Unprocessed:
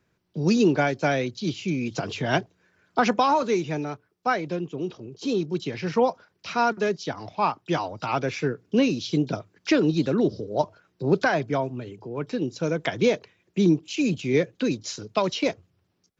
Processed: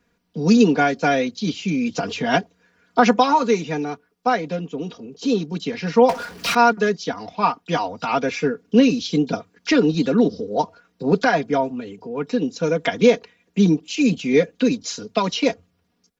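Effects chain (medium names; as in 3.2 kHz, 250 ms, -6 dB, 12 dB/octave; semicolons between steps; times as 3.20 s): comb 4.2 ms, depth 82%; 6.09–6.55 s: power-law waveshaper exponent 0.5; trim +2.5 dB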